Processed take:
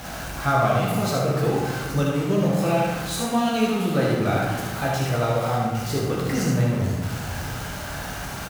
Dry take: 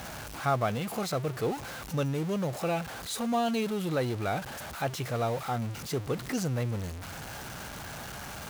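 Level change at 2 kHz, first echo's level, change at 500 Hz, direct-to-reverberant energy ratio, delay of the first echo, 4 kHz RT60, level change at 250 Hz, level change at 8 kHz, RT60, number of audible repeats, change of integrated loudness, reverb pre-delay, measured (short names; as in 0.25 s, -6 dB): +8.5 dB, -4.5 dB, +8.0 dB, -4.5 dB, 75 ms, 0.85 s, +9.0 dB, +7.0 dB, 1.4 s, 1, +8.5 dB, 14 ms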